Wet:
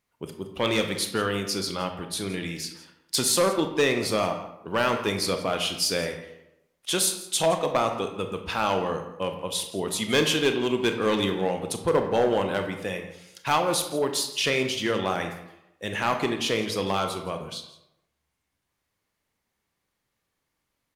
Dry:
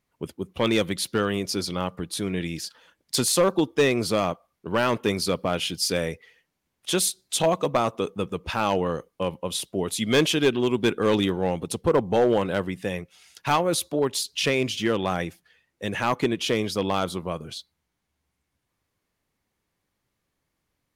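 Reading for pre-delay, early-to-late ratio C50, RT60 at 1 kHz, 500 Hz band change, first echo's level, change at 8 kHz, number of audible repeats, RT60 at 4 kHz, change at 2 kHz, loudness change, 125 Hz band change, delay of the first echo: 25 ms, 7.5 dB, 0.85 s, -1.5 dB, -17.0 dB, +0.5 dB, 1, 0.50 s, +0.5 dB, -1.0 dB, -3.5 dB, 0.168 s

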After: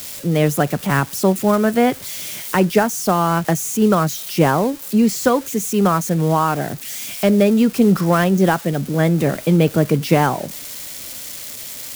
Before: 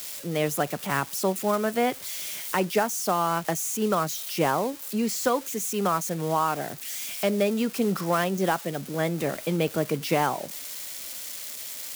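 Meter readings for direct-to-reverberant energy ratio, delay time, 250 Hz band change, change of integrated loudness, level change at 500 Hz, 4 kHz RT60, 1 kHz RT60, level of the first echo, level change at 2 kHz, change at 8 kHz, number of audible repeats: none, none, +12.5 dB, +9.5 dB, +8.0 dB, none, none, none, +7.0 dB, +5.0 dB, none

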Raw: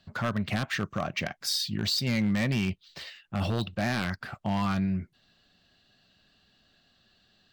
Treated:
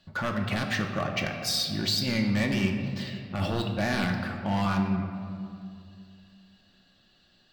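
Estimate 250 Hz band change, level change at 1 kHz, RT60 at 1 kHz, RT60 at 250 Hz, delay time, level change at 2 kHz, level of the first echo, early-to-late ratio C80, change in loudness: +1.5 dB, +2.0 dB, 2.2 s, 2.7 s, none, +2.0 dB, none, 6.5 dB, +1.0 dB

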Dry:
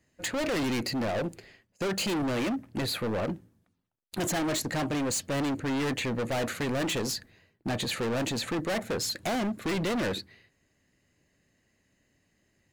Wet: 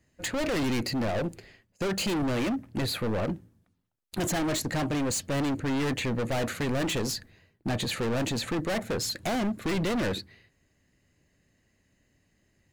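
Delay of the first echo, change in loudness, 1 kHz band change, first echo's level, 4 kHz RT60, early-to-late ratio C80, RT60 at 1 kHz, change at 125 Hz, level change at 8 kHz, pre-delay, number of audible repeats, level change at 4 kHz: none, +0.5 dB, 0.0 dB, none, none, none, none, +3.0 dB, 0.0 dB, none, none, 0.0 dB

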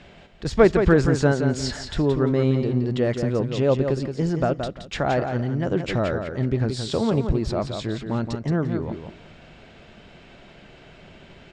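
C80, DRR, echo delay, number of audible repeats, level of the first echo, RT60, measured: none, none, 0.173 s, 3, -7.0 dB, none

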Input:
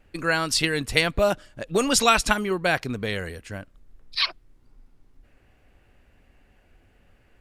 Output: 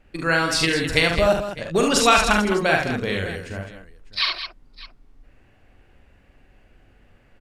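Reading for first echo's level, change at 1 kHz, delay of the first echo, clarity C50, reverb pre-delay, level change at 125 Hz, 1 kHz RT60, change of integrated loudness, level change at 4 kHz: -4.5 dB, +4.0 dB, 43 ms, none, none, +4.0 dB, none, +3.0 dB, +2.5 dB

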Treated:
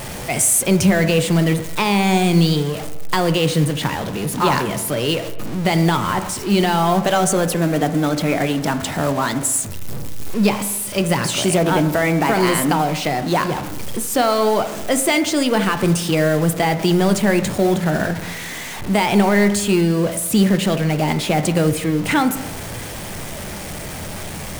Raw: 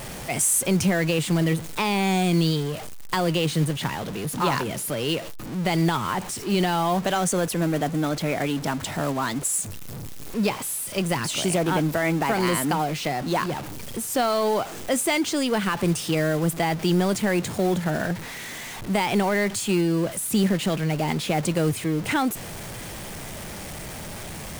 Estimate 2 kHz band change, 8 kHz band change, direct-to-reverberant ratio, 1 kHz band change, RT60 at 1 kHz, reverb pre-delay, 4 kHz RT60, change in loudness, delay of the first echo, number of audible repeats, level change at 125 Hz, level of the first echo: +6.0 dB, +5.5 dB, 9.0 dB, +6.0 dB, 1.1 s, 10 ms, 1.0 s, +6.0 dB, none, none, +6.0 dB, none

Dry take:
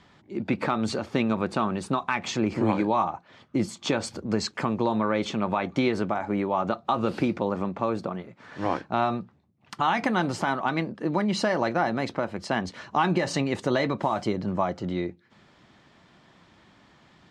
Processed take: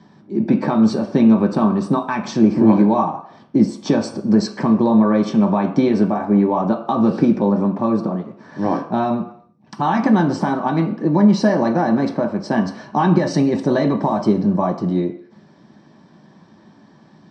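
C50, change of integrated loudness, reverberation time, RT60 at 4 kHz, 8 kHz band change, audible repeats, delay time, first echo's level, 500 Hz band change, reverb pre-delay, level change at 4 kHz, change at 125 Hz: 10.5 dB, +9.5 dB, 0.65 s, 0.60 s, n/a, none, none, none, +7.5 dB, 3 ms, 0.0 dB, +10.0 dB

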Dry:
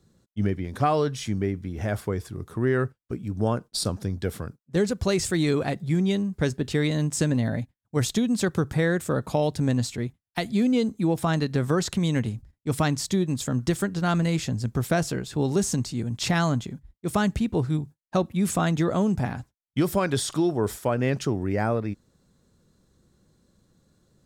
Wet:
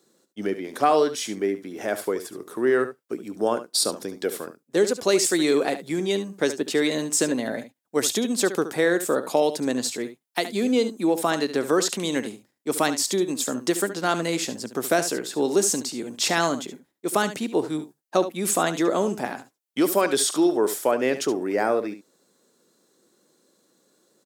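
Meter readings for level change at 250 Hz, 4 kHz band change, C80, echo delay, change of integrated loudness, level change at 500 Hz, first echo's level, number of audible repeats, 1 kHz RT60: -1.0 dB, +5.0 dB, none, 71 ms, +2.0 dB, +4.5 dB, -12.0 dB, 1, none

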